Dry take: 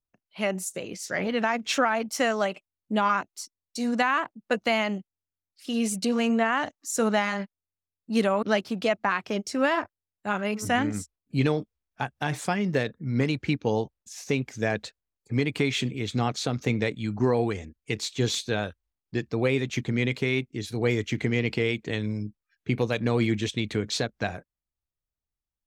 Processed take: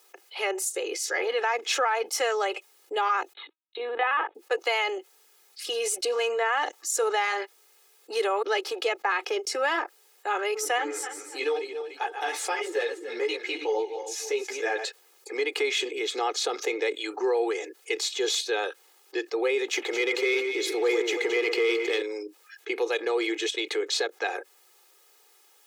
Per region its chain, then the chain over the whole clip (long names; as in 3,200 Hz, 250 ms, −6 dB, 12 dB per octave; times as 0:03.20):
0:03.33–0:04.35: downward expander −53 dBFS + linear-prediction vocoder at 8 kHz pitch kept
0:10.78–0:14.85: feedback delay that plays each chunk backwards 147 ms, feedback 44%, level −13 dB + string-ensemble chorus
0:19.68–0:22.02: leveller curve on the samples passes 1 + delay that swaps between a low-pass and a high-pass 110 ms, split 1,900 Hz, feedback 66%, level −7.5 dB
whole clip: Butterworth high-pass 360 Hz 48 dB per octave; comb filter 2.4 ms, depth 74%; envelope flattener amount 50%; level −5 dB